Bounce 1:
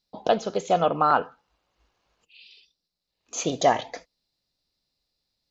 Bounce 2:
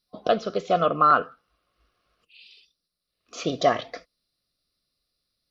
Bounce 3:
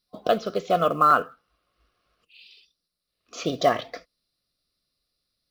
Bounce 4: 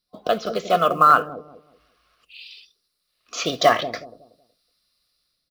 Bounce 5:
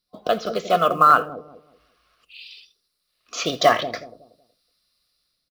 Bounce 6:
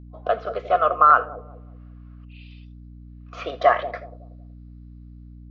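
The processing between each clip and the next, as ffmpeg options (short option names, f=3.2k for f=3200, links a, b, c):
-af "superequalizer=9b=0.282:10b=1.78:15b=0.251:16b=2.51"
-af "acrusher=bits=8:mode=log:mix=0:aa=0.000001"
-filter_complex "[0:a]acrossover=split=730[a][b];[a]aecho=1:1:186|372|558|744:0.562|0.157|0.0441|0.0123[c];[b]dynaudnorm=f=170:g=5:m=10dB[d];[c][d]amix=inputs=2:normalize=0,volume=-1dB"
-af "aecho=1:1:83:0.0794"
-af "asuperpass=centerf=980:order=4:qfactor=0.66,aeval=exprs='val(0)+0.00891*(sin(2*PI*60*n/s)+sin(2*PI*2*60*n/s)/2+sin(2*PI*3*60*n/s)/3+sin(2*PI*4*60*n/s)/4+sin(2*PI*5*60*n/s)/5)':c=same"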